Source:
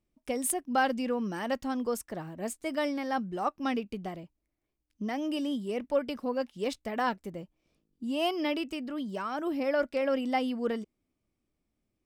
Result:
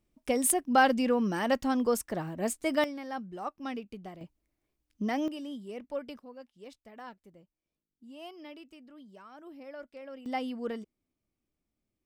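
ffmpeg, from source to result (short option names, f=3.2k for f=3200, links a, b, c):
-af "asetnsamples=n=441:p=0,asendcmd='2.84 volume volume -6.5dB;4.21 volume volume 2.5dB;5.28 volume volume -8dB;6.19 volume volume -16.5dB;10.26 volume volume -4.5dB',volume=4dB"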